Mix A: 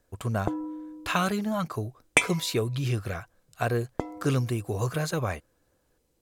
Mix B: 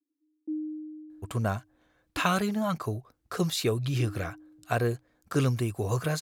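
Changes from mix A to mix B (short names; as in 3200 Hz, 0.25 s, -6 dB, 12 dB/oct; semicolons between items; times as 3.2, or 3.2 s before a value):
speech: entry +1.10 s; background: add Butterworth band-pass 300 Hz, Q 7.4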